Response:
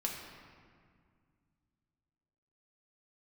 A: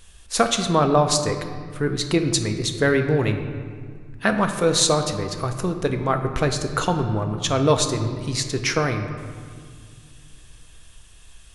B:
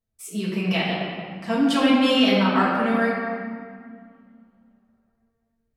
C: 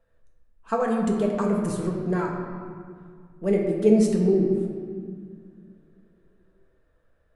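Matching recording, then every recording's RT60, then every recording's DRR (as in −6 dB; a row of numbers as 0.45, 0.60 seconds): C; 2.1, 2.0, 2.0 seconds; 5.0, −8.0, −1.0 decibels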